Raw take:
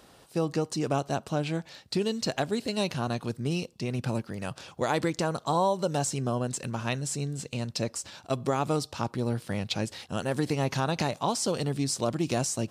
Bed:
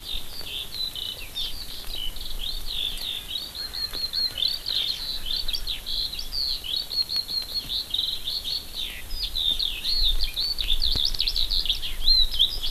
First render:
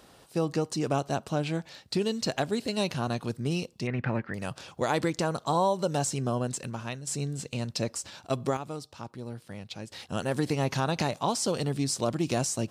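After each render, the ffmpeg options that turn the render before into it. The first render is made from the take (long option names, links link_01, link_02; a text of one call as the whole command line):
ffmpeg -i in.wav -filter_complex "[0:a]asettb=1/sr,asplit=3[link_01][link_02][link_03];[link_01]atrim=end=3.874[link_04];[link_02]atrim=start=3.87:end=4.34,asetpts=PTS-STARTPTS,afade=type=in:duration=0.004:curve=qsin,afade=type=out:start_time=0.466:duration=0.004:curve=qsin,lowpass=frequency=1900:width_type=q:width=4.4[link_05];[link_03]atrim=start=4.336[link_06];[link_04][link_05]acrossfade=duration=0.004:curve1=hsin:curve2=qsin[link_07];[link_07][link_06]acrossfade=duration=0.004:curve1=qsin:curve2=hsin,asplit=4[link_08][link_09][link_10][link_11];[link_08]atrim=end=7.07,asetpts=PTS-STARTPTS,afade=type=out:start_time=6.47:duration=0.6:silence=0.316228[link_12];[link_09]atrim=start=7.07:end=8.57,asetpts=PTS-STARTPTS,afade=type=in:duration=0.004:curve=hsin:silence=0.316228,afade=type=out:start_time=1.25:duration=0.25:curve=log:silence=0.316228[link_13];[link_10]atrim=start=8.57:end=9.92,asetpts=PTS-STARTPTS,volume=-10dB[link_14];[link_11]atrim=start=9.92,asetpts=PTS-STARTPTS,afade=type=in:duration=0.25:curve=log:silence=0.316228[link_15];[link_12][link_13][link_14][link_15]concat=n=4:v=0:a=1" out.wav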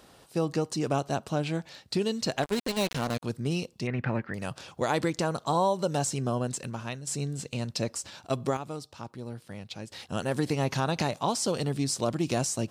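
ffmpeg -i in.wav -filter_complex "[0:a]asplit=3[link_01][link_02][link_03];[link_01]afade=type=out:start_time=2.42:duration=0.02[link_04];[link_02]acrusher=bits=4:mix=0:aa=0.5,afade=type=in:start_time=2.42:duration=0.02,afade=type=out:start_time=3.22:duration=0.02[link_05];[link_03]afade=type=in:start_time=3.22:duration=0.02[link_06];[link_04][link_05][link_06]amix=inputs=3:normalize=0" out.wav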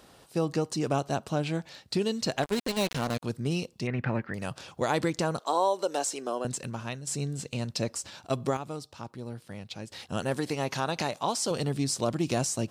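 ffmpeg -i in.wav -filter_complex "[0:a]asettb=1/sr,asplit=3[link_01][link_02][link_03];[link_01]atrim=end=5.394[link_04];[link_02]atrim=start=5.39:end=6.45,asetpts=PTS-STARTPTS,afade=type=in:duration=0.004:curve=qsin,afade=type=out:start_time=1.056:duration=0.004:curve=qsin,highpass=frequency=310:width=0.5412,highpass=frequency=310:width=1.3066[link_05];[link_03]atrim=start=6.446[link_06];[link_04][link_05]acrossfade=duration=0.004:curve1=hsin:curve2=qsin[link_07];[link_07][link_06]acrossfade=duration=0.004:curve1=qsin:curve2=hsin,asettb=1/sr,asplit=3[link_08][link_09][link_10];[link_08]atrim=end=10.344[link_11];[link_09]atrim=start=10.34:end=11.51,asetpts=PTS-STARTPTS,afade=type=in:duration=0.004:curve=qsin,afade=type=out:start_time=1.166:duration=0.004:curve=qsin,lowshelf=frequency=210:gain=-9.5[link_12];[link_10]atrim=start=11.506[link_13];[link_11][link_12]acrossfade=duration=0.004:curve1=hsin:curve2=qsin[link_14];[link_14][link_13]acrossfade=duration=0.004:curve1=qsin:curve2=hsin" out.wav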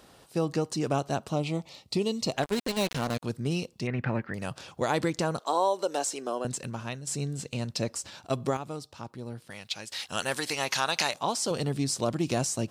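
ffmpeg -i in.wav -filter_complex "[0:a]asettb=1/sr,asplit=3[link_01][link_02][link_03];[link_01]atrim=end=1.344[link_04];[link_02]atrim=start=1.34:end=2.34,asetpts=PTS-STARTPTS,afade=type=in:duration=0.004:curve=qsin,afade=type=out:start_time=0.996:duration=0.004:curve=qsin,asuperstop=centerf=1600:order=4:qfactor=2.4[link_05];[link_03]atrim=start=2.336[link_06];[link_04][link_05]acrossfade=duration=0.004:curve1=hsin:curve2=qsin[link_07];[link_07][link_06]acrossfade=duration=0.004:curve1=qsin:curve2=hsin,asettb=1/sr,asplit=3[link_08][link_09][link_10];[link_08]atrim=end=9.504[link_11];[link_09]atrim=start=9.5:end=11.14,asetpts=PTS-STARTPTS,afade=type=in:duration=0.004:curve=qsin,afade=type=out:start_time=1.636:duration=0.004:curve=qsin,tiltshelf=frequency=730:gain=-9[link_12];[link_10]atrim=start=11.136[link_13];[link_11][link_12]acrossfade=duration=0.004:curve1=hsin:curve2=qsin[link_14];[link_14][link_13]acrossfade=duration=0.004:curve1=qsin:curve2=hsin" out.wav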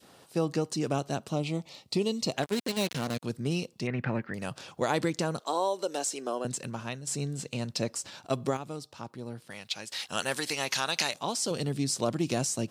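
ffmpeg -i in.wav -af "highpass=110,adynamicequalizer=threshold=0.01:dfrequency=930:dqfactor=0.77:tfrequency=930:tqfactor=0.77:attack=5:release=100:ratio=0.375:range=3:mode=cutabove:tftype=bell" out.wav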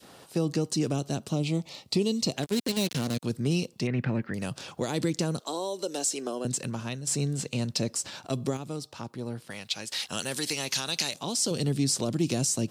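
ffmpeg -i in.wav -filter_complex "[0:a]asplit=2[link_01][link_02];[link_02]alimiter=limit=-22.5dB:level=0:latency=1:release=24,volume=-2.5dB[link_03];[link_01][link_03]amix=inputs=2:normalize=0,acrossover=split=430|3000[link_04][link_05][link_06];[link_05]acompressor=threshold=-40dB:ratio=3[link_07];[link_04][link_07][link_06]amix=inputs=3:normalize=0" out.wav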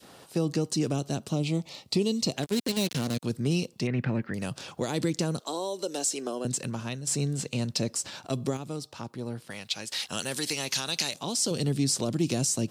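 ffmpeg -i in.wav -af anull out.wav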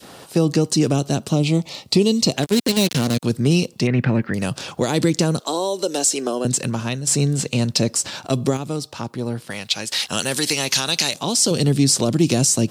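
ffmpeg -i in.wav -af "volume=10dB,alimiter=limit=-3dB:level=0:latency=1" out.wav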